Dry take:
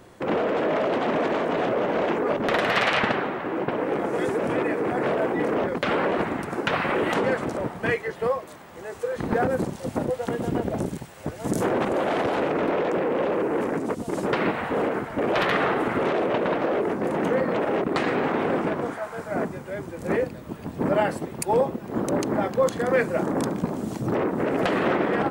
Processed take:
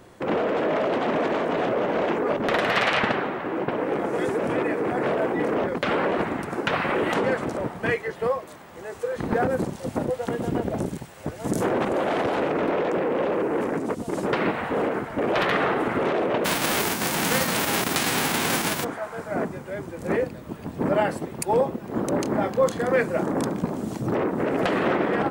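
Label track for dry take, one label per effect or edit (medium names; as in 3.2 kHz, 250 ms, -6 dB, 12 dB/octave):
16.440000	18.830000	formants flattened exponent 0.3
22.170000	22.860000	doubling 28 ms -11 dB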